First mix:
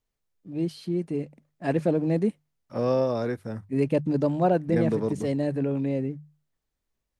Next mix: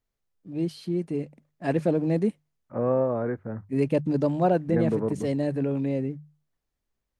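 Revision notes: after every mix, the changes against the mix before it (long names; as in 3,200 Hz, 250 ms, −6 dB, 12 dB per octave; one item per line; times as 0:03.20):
second voice: add low-pass filter 1,800 Hz 24 dB per octave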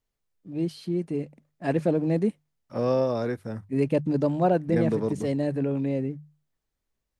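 second voice: remove low-pass filter 1,800 Hz 24 dB per octave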